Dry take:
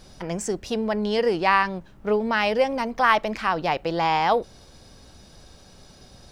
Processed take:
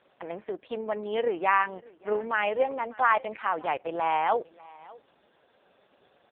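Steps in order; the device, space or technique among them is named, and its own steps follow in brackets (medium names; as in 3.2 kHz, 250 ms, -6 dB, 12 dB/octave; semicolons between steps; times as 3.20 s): 0.61–1.63 s: high-pass 47 Hz 12 dB/octave; satellite phone (band-pass 390–3200 Hz; delay 592 ms -22.5 dB; trim -3 dB; AMR-NB 4.75 kbps 8 kHz)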